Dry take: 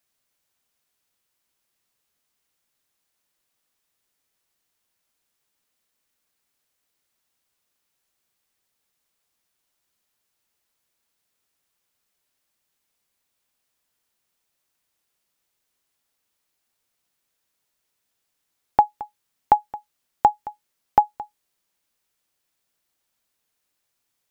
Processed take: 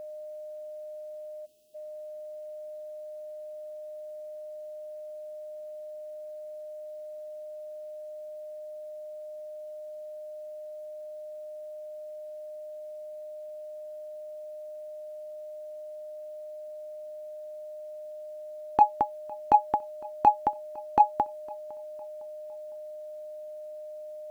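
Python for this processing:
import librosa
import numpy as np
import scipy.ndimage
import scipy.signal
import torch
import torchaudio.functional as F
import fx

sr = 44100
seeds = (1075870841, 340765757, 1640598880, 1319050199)

p1 = np.clip(x, -10.0 ** (-16.5 / 20.0), 10.0 ** (-16.5 / 20.0))
p2 = x + F.gain(torch.from_numpy(p1), -12.0).numpy()
p3 = fx.peak_eq(p2, sr, hz=290.0, db=9.5, octaves=1.4)
p4 = fx.over_compress(p3, sr, threshold_db=-14.0, ratio=-0.5)
p5 = p4 + 10.0 ** (-38.0 / 20.0) * np.sin(2.0 * np.pi * 610.0 * np.arange(len(p4)) / sr)
p6 = fx.spec_box(p5, sr, start_s=1.46, length_s=0.29, low_hz=480.0, high_hz=2500.0, gain_db=-25)
y = p6 + fx.echo_feedback(p6, sr, ms=507, feedback_pct=42, wet_db=-23.5, dry=0)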